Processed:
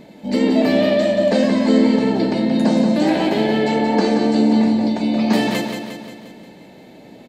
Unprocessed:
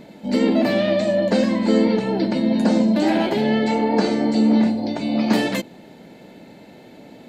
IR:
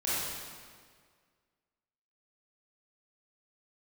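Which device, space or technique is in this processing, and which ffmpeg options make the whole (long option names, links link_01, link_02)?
keyed gated reverb: -filter_complex "[0:a]asplit=3[link_01][link_02][link_03];[1:a]atrim=start_sample=2205[link_04];[link_02][link_04]afir=irnorm=-1:irlink=0[link_05];[link_03]apad=whole_len=321168[link_06];[link_05][link_06]sidechaingate=range=-33dB:threshold=-35dB:ratio=16:detection=peak,volume=-17dB[link_07];[link_01][link_07]amix=inputs=2:normalize=0,bandreject=frequency=1400:width=11,aecho=1:1:177|354|531|708|885|1062|1239:0.473|0.26|0.143|0.0787|0.0433|0.0238|0.0131"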